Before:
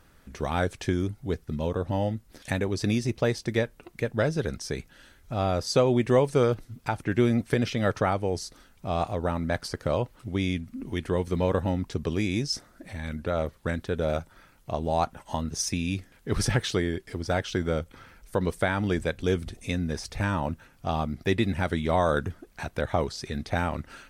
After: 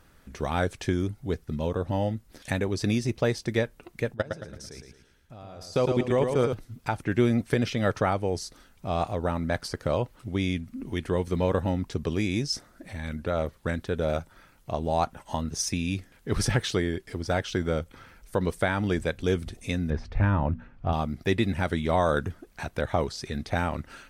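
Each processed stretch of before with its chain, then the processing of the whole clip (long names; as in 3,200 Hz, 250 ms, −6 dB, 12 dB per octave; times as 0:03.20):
0:04.14–0:06.53: output level in coarse steps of 22 dB + repeating echo 111 ms, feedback 38%, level −5.5 dB
0:19.90–0:20.93: low-pass filter 2,200 Hz + low-shelf EQ 110 Hz +12 dB + mains-hum notches 60/120/180/240 Hz
whole clip: no processing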